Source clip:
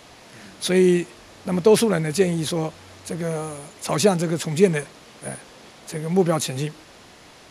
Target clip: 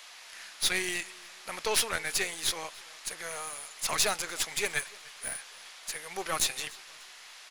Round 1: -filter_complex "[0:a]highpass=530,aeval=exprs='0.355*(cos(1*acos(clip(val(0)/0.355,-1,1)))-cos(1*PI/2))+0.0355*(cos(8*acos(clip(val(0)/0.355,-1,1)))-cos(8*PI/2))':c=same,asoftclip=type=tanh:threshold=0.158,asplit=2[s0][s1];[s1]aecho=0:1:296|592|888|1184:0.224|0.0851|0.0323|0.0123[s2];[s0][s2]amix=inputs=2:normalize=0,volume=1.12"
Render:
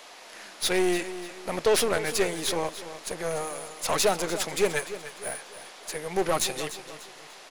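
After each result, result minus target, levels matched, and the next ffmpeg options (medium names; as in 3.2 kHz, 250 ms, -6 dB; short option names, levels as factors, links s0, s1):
500 Hz band +9.0 dB; echo-to-direct +10 dB
-filter_complex "[0:a]highpass=1400,aeval=exprs='0.355*(cos(1*acos(clip(val(0)/0.355,-1,1)))-cos(1*PI/2))+0.0355*(cos(8*acos(clip(val(0)/0.355,-1,1)))-cos(8*PI/2))':c=same,asoftclip=type=tanh:threshold=0.158,asplit=2[s0][s1];[s1]aecho=0:1:296|592|888|1184:0.224|0.0851|0.0323|0.0123[s2];[s0][s2]amix=inputs=2:normalize=0,volume=1.12"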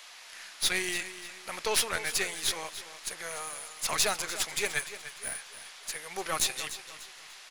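echo-to-direct +10 dB
-filter_complex "[0:a]highpass=1400,aeval=exprs='0.355*(cos(1*acos(clip(val(0)/0.355,-1,1)))-cos(1*PI/2))+0.0355*(cos(8*acos(clip(val(0)/0.355,-1,1)))-cos(8*PI/2))':c=same,asoftclip=type=tanh:threshold=0.158,asplit=2[s0][s1];[s1]aecho=0:1:296|592|888:0.0708|0.0269|0.0102[s2];[s0][s2]amix=inputs=2:normalize=0,volume=1.12"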